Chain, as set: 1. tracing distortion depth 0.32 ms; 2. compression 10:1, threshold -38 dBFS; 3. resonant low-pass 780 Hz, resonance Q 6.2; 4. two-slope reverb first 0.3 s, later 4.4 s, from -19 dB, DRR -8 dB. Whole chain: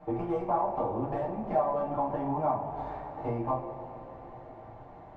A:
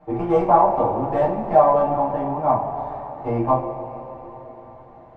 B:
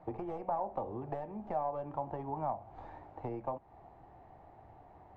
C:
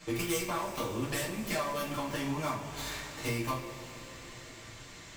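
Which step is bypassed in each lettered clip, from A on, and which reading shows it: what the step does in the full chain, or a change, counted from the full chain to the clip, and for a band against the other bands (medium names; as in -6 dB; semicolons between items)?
2, mean gain reduction 5.5 dB; 4, momentary loudness spread change +3 LU; 3, 2 kHz band +17.5 dB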